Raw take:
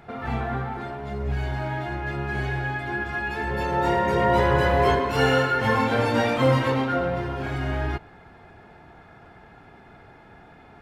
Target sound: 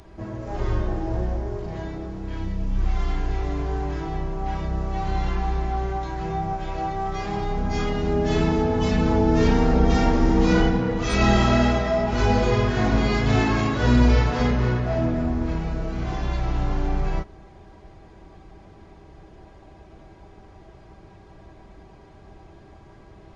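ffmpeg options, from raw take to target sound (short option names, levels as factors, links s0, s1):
-af "bass=f=250:g=5,treble=f=4000:g=15,asetrate=20418,aresample=44100"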